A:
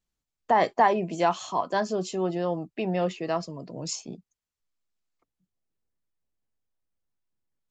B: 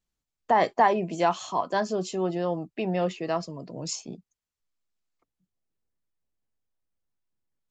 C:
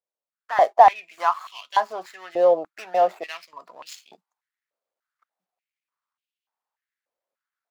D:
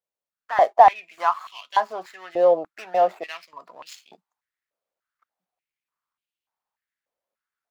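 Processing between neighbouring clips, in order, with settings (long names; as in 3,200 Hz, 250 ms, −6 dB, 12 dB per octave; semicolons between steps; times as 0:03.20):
no processing that can be heard
running median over 15 samples; automatic gain control gain up to 12 dB; high-pass on a step sequencer 3.4 Hz 550–2,900 Hz; level −8.5 dB
bass and treble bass +3 dB, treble −3 dB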